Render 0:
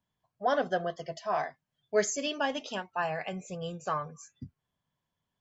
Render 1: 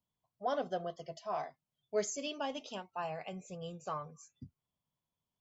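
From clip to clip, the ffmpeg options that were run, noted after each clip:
ffmpeg -i in.wav -af "equalizer=frequency=1700:width_type=o:width=0.4:gain=-10.5,volume=-6.5dB" out.wav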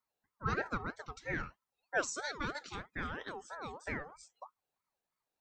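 ffmpeg -i in.wav -af "aeval=exprs='val(0)*sin(2*PI*880*n/s+880*0.35/3.1*sin(2*PI*3.1*n/s))':channel_layout=same,volume=2.5dB" out.wav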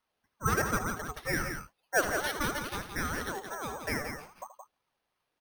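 ffmpeg -i in.wav -af "acrusher=samples=6:mix=1:aa=0.000001,aecho=1:1:78.72|172:0.251|0.447,volume=6dB" out.wav

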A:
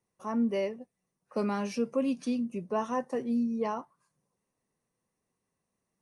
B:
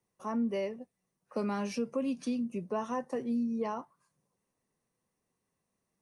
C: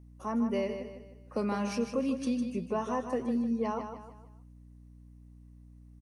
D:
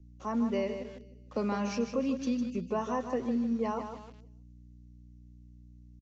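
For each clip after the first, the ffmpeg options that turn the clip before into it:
ffmpeg -i in.wav -filter_complex "[0:a]acrossover=split=140[link_01][link_02];[link_02]acompressor=threshold=-32dB:ratio=2[link_03];[link_01][link_03]amix=inputs=2:normalize=0" out.wav
ffmpeg -i in.wav -af "aecho=1:1:154|308|462|616:0.398|0.155|0.0606|0.0236,aeval=exprs='val(0)+0.00224*(sin(2*PI*60*n/s)+sin(2*PI*2*60*n/s)/2+sin(2*PI*3*60*n/s)/3+sin(2*PI*4*60*n/s)/4+sin(2*PI*5*60*n/s)/5)':channel_layout=same,volume=1.5dB" out.wav
ffmpeg -i in.wav -filter_complex "[0:a]acrossover=split=140|560|2300[link_01][link_02][link_03][link_04];[link_03]aeval=exprs='val(0)*gte(abs(val(0)),0.00224)':channel_layout=same[link_05];[link_01][link_02][link_05][link_04]amix=inputs=4:normalize=0,aresample=16000,aresample=44100" out.wav

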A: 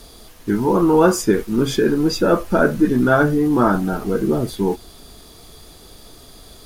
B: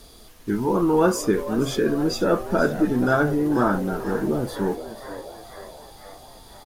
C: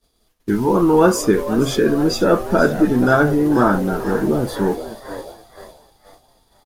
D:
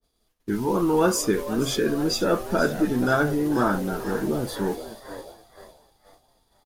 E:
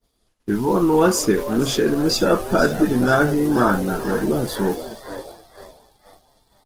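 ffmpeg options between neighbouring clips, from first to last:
ffmpeg -i in.wav -filter_complex "[0:a]asplit=7[link_01][link_02][link_03][link_04][link_05][link_06][link_07];[link_02]adelay=483,afreqshift=100,volume=-13.5dB[link_08];[link_03]adelay=966,afreqshift=200,volume=-18.1dB[link_09];[link_04]adelay=1449,afreqshift=300,volume=-22.7dB[link_10];[link_05]adelay=1932,afreqshift=400,volume=-27.2dB[link_11];[link_06]adelay=2415,afreqshift=500,volume=-31.8dB[link_12];[link_07]adelay=2898,afreqshift=600,volume=-36.4dB[link_13];[link_01][link_08][link_09][link_10][link_11][link_12][link_13]amix=inputs=7:normalize=0,volume=-5dB" out.wav
ffmpeg -i in.wav -af "agate=range=-33dB:threshold=-33dB:ratio=3:detection=peak,volume=5.5dB" out.wav
ffmpeg -i in.wav -af "adynamicequalizer=threshold=0.0251:dfrequency=2000:dqfactor=0.7:tfrequency=2000:tqfactor=0.7:attack=5:release=100:ratio=0.375:range=3:mode=boostabove:tftype=highshelf,volume=-7.5dB" out.wav
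ffmpeg -i in.wav -af "volume=5dB" -ar 48000 -c:a libopus -b:a 16k out.opus

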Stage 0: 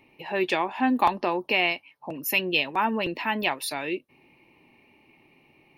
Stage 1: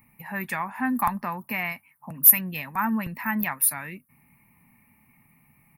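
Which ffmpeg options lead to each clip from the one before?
ffmpeg -i in.wav -filter_complex "[0:a]firequalizer=gain_entry='entry(220,0);entry(330,-24);entry(840,-10);entry(1200,-3);entry(2000,-4);entry(3000,-24);entry(11000,14)':delay=0.05:min_phase=1,asplit=2[link_01][link_02];[link_02]acontrast=71,volume=1dB[link_03];[link_01][link_03]amix=inputs=2:normalize=0,volume=-5.5dB" out.wav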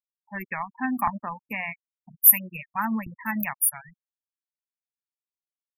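ffmpeg -i in.wav -af "bandreject=frequency=60:width_type=h:width=6,bandreject=frequency=120:width_type=h:width=6,bandreject=frequency=180:width_type=h:width=6,bandreject=frequency=240:width_type=h:width=6,aeval=exprs='sgn(val(0))*max(abs(val(0))-0.0106,0)':channel_layout=same,afftfilt=real='re*gte(hypot(re,im),0.0355)':imag='im*gte(hypot(re,im),0.0355)':win_size=1024:overlap=0.75" out.wav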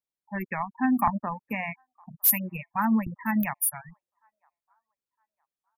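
ffmpeg -i in.wav -filter_complex "[0:a]acrossover=split=850|970[link_01][link_02][link_03];[link_01]acontrast=89[link_04];[link_02]aecho=1:1:961|1922|2883:0.126|0.039|0.0121[link_05];[link_03]asoftclip=type=tanh:threshold=-11.5dB[link_06];[link_04][link_05][link_06]amix=inputs=3:normalize=0,volume=-2.5dB" out.wav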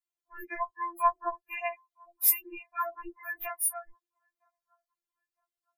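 ffmpeg -i in.wav -af "afftfilt=real='re*4*eq(mod(b,16),0)':imag='im*4*eq(mod(b,16),0)':win_size=2048:overlap=0.75" out.wav

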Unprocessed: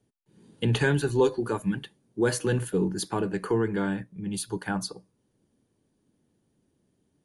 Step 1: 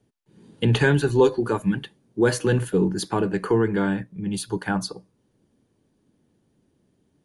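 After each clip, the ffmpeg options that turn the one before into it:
ffmpeg -i in.wav -af "highshelf=frequency=8100:gain=-8,volume=5dB" out.wav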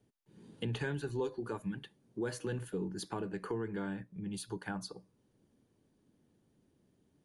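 ffmpeg -i in.wav -af "acompressor=threshold=-38dB:ratio=2,volume=-5.5dB" out.wav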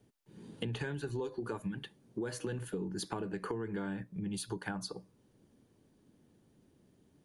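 ffmpeg -i in.wav -af "acompressor=threshold=-39dB:ratio=6,volume=5dB" out.wav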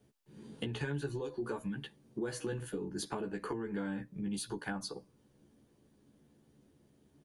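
ffmpeg -i in.wav -filter_complex "[0:a]asplit=2[link_01][link_02];[link_02]adelay=14,volume=-3dB[link_03];[link_01][link_03]amix=inputs=2:normalize=0,volume=-1.5dB" out.wav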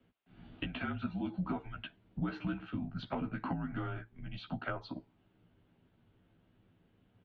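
ffmpeg -i in.wav -af "highpass=frequency=290:width_type=q:width=0.5412,highpass=frequency=290:width_type=q:width=1.307,lowpass=frequency=3600:width_type=q:width=0.5176,lowpass=frequency=3600:width_type=q:width=0.7071,lowpass=frequency=3600:width_type=q:width=1.932,afreqshift=-180,volume=3dB" out.wav

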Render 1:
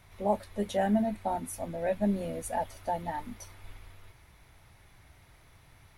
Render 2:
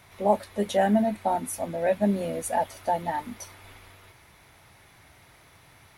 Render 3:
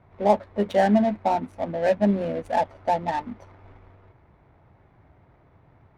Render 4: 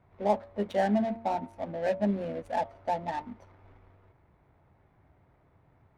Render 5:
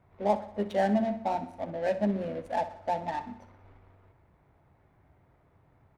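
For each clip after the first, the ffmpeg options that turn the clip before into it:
ffmpeg -i in.wav -af "highpass=frequency=190:poles=1,volume=6.5dB" out.wav
ffmpeg -i in.wav -af "adynamicsmooth=sensitivity=4.5:basefreq=770,volume=3dB" out.wav
ffmpeg -i in.wav -af "bandreject=frequency=114.1:width_type=h:width=4,bandreject=frequency=228.2:width_type=h:width=4,bandreject=frequency=342.3:width_type=h:width=4,bandreject=frequency=456.4:width_type=h:width=4,bandreject=frequency=570.5:width_type=h:width=4,bandreject=frequency=684.6:width_type=h:width=4,bandreject=frequency=798.7:width_type=h:width=4,bandreject=frequency=912.8:width_type=h:width=4,bandreject=frequency=1026.9:width_type=h:width=4,bandreject=frequency=1141:width_type=h:width=4,bandreject=frequency=1255.1:width_type=h:width=4,volume=-7dB" out.wav
ffmpeg -i in.wav -af "aecho=1:1:62|124|186|248|310|372:0.2|0.11|0.0604|0.0332|0.0183|0.01" out.wav

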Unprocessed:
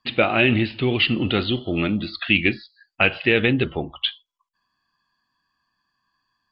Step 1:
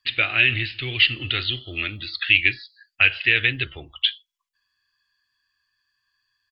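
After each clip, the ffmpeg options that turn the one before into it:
ffmpeg -i in.wav -af "firequalizer=gain_entry='entry(120,0);entry(180,-22);entry(300,-9);entry(530,-11);entry(900,-11);entry(1700,7)':delay=0.05:min_phase=1,volume=-4dB" out.wav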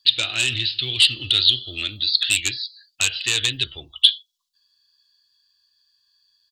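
ffmpeg -i in.wav -af "aeval=exprs='0.891*sin(PI/2*2.24*val(0)/0.891)':channel_layout=same,highshelf=frequency=2900:width_type=q:width=3:gain=10,volume=-14dB" out.wav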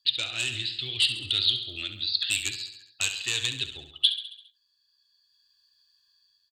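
ffmpeg -i in.wav -filter_complex "[0:a]dynaudnorm=framelen=430:gausssize=5:maxgain=8.5dB,asplit=2[link_01][link_02];[link_02]aecho=0:1:68|136|204|272|340|408:0.299|0.167|0.0936|0.0524|0.0294|0.0164[link_03];[link_01][link_03]amix=inputs=2:normalize=0,volume=-8.5dB" out.wav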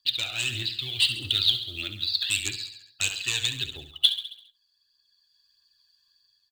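ffmpeg -i in.wav -filter_complex "[0:a]acrossover=split=3600[link_01][link_02];[link_01]acrusher=bits=4:mode=log:mix=0:aa=0.000001[link_03];[link_03][link_02]amix=inputs=2:normalize=0,aphaser=in_gain=1:out_gain=1:delay=1.5:decay=0.41:speed=1.6:type=triangular" out.wav

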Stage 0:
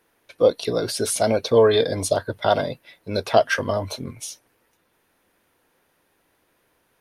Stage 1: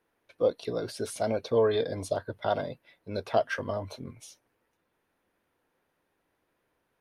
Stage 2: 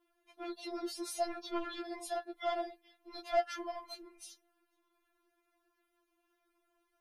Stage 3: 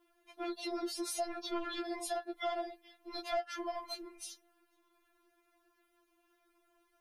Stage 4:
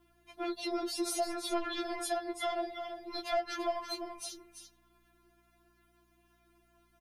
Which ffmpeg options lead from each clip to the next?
ffmpeg -i in.wav -af "highshelf=frequency=3400:gain=-8.5,volume=-8.5dB" out.wav
ffmpeg -i in.wav -filter_complex "[0:a]acrossover=split=130|3500[link_01][link_02][link_03];[link_02]asoftclip=type=tanh:threshold=-25dB[link_04];[link_01][link_04][link_03]amix=inputs=3:normalize=0,afftfilt=real='re*4*eq(mod(b,16),0)':imag='im*4*eq(mod(b,16),0)':win_size=2048:overlap=0.75" out.wav
ffmpeg -i in.wav -af "acompressor=threshold=-40dB:ratio=3,volume=5dB" out.wav
ffmpeg -i in.wav -af "aeval=exprs='val(0)+0.000178*(sin(2*PI*60*n/s)+sin(2*PI*2*60*n/s)/2+sin(2*PI*3*60*n/s)/3+sin(2*PI*4*60*n/s)/4+sin(2*PI*5*60*n/s)/5)':channel_layout=same,aecho=1:1:338:0.376,volume=3dB" out.wav

